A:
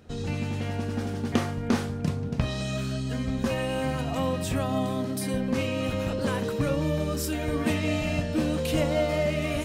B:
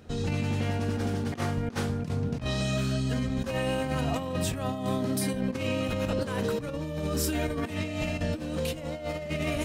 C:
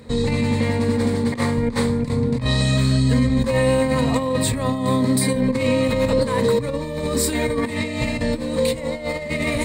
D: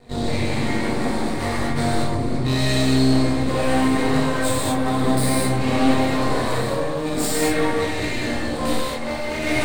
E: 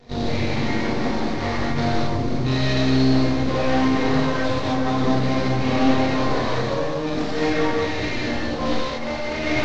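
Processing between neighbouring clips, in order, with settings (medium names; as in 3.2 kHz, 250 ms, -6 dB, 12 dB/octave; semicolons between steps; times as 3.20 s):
compressor with a negative ratio -29 dBFS, ratio -0.5
rippled EQ curve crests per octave 0.98, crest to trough 12 dB; trim +7.5 dB
chorus voices 2, 0.26 Hz, delay 21 ms, depth 1.9 ms; half-wave rectifier; gated-style reverb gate 260 ms flat, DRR -6.5 dB
CVSD coder 32 kbps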